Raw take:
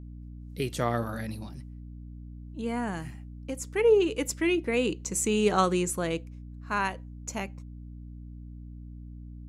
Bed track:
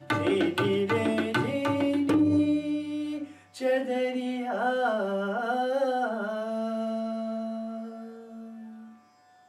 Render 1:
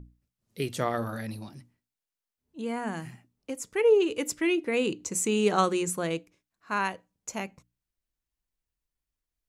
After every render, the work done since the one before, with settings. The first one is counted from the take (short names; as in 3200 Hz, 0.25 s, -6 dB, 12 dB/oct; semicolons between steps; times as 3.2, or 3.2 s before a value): notches 60/120/180/240/300 Hz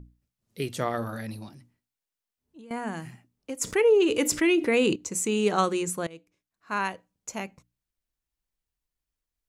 1.49–2.71 compressor, threshold -45 dBFS; 3.61–4.96 fast leveller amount 50%; 6.07–6.76 fade in, from -19.5 dB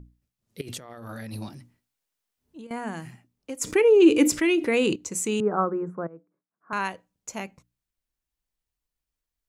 0.61–2.67 negative-ratio compressor -39 dBFS; 3.66–4.31 small resonant body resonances 310/2400 Hz, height 12 dB; 5.4–6.73 elliptic band-pass 150–1400 Hz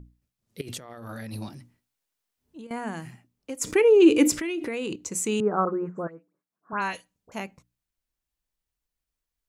4.37–5 compressor, threshold -27 dBFS; 5.65–7.32 dispersion highs, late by 0.1 s, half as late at 2500 Hz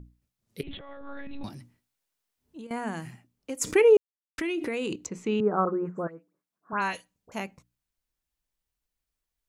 0.63–1.44 monotone LPC vocoder at 8 kHz 280 Hz; 3.97–4.38 mute; 5.06–5.85 air absorption 260 m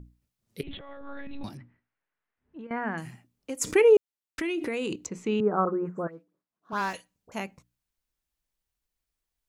1.57–2.98 synth low-pass 1800 Hz, resonance Q 1.9; 6.12–6.94 median filter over 15 samples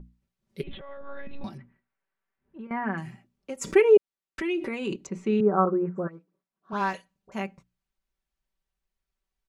LPF 2900 Hz 6 dB/oct; comb 5.2 ms, depth 65%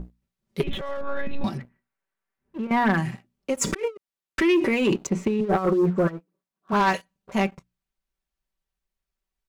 negative-ratio compressor -26 dBFS, ratio -0.5; sample leveller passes 2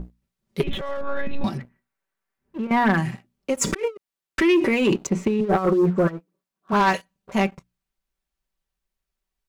gain +2 dB